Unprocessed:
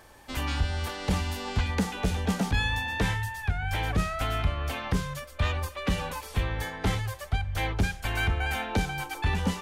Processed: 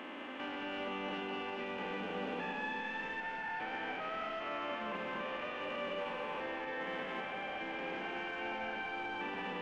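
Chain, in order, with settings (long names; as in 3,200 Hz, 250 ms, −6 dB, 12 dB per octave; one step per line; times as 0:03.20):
spectrum averaged block by block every 400 ms
Butterworth high-pass 230 Hz 36 dB per octave
high shelf with overshoot 3,600 Hz −7 dB, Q 3
brickwall limiter −30.5 dBFS, peak gain reduction 8.5 dB
soft clipping −35 dBFS, distortion −17 dB
head-to-tape spacing loss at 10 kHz 26 dB
flutter between parallel walls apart 8.8 metres, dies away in 0.31 s
on a send at −4.5 dB: convolution reverb RT60 0.80 s, pre-delay 181 ms
on the sum: level +3 dB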